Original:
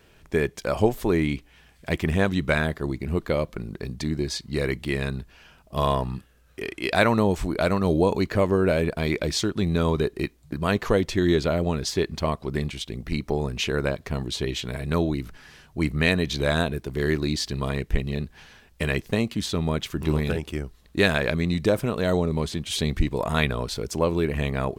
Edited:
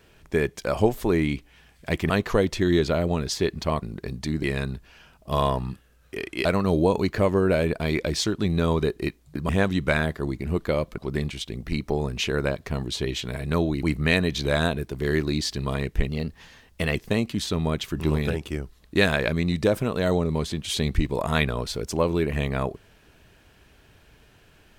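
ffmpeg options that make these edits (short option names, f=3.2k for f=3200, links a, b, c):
-filter_complex "[0:a]asplit=10[a][b][c][d][e][f][g][h][i][j];[a]atrim=end=2.102[k];[b]atrim=start=10.658:end=12.382[l];[c]atrim=start=3.588:end=4.202[m];[d]atrim=start=4.878:end=6.902[n];[e]atrim=start=7.618:end=10.662[o];[f]atrim=start=2.098:end=3.592[p];[g]atrim=start=12.378:end=15.232[q];[h]atrim=start=15.778:end=18.044[r];[i]atrim=start=18.04:end=18.97,asetpts=PTS-STARTPTS,asetrate=47628,aresample=44100[s];[j]atrim=start=18.966[t];[k][l]acrossfade=d=0.004:c1=hsin:c2=hsin[u];[u][m]acrossfade=d=0.004:c1=hsin:c2=hsin[v];[v][n]acrossfade=d=0.004:c1=hsin:c2=hsin[w];[w][o]acrossfade=d=0.004:c1=hsin:c2=hsin[x];[x][p]acrossfade=d=0.004:c1=hsin:c2=hsin[y];[y][q]acrossfade=d=0.004:c1=hsin:c2=hsin[z];[z][r]acrossfade=d=0.004:c1=hsin:c2=hsin[aa];[aa][s]acrossfade=d=0.004:c1=hsin:c2=hsin[ab];[ab][t]acrossfade=d=0.004:c1=hsin:c2=hsin"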